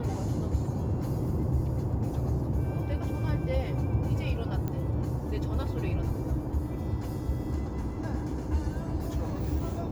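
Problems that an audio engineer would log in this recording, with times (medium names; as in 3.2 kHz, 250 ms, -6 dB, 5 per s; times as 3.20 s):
4.68 s: pop -21 dBFS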